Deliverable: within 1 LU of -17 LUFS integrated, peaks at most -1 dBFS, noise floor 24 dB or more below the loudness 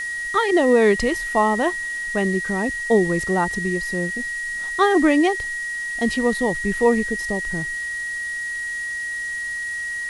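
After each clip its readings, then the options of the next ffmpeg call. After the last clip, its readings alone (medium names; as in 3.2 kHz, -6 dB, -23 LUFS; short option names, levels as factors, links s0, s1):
steady tone 1.9 kHz; tone level -25 dBFS; noise floor -28 dBFS; noise floor target -45 dBFS; loudness -21.0 LUFS; peak level -5.5 dBFS; loudness target -17.0 LUFS
-> -af "bandreject=f=1900:w=30"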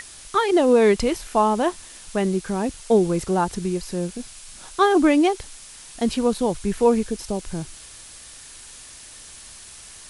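steady tone not found; noise floor -43 dBFS; noise floor target -46 dBFS
-> -af "afftdn=nr=6:nf=-43"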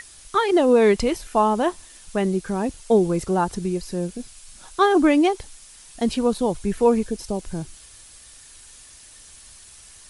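noise floor -47 dBFS; loudness -21.5 LUFS; peak level -6.0 dBFS; loudness target -17.0 LUFS
-> -af "volume=1.68"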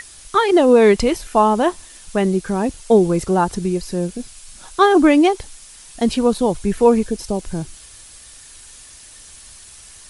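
loudness -17.0 LUFS; peak level -1.5 dBFS; noise floor -42 dBFS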